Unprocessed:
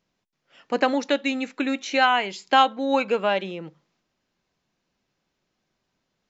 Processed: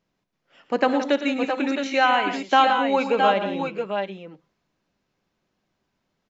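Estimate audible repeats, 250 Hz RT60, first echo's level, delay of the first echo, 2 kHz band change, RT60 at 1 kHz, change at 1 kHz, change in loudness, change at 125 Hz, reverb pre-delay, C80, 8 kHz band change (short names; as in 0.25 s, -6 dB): 4, none, -19.0 dB, 67 ms, +1.0 dB, none, +2.0 dB, +1.0 dB, +3.0 dB, none, none, n/a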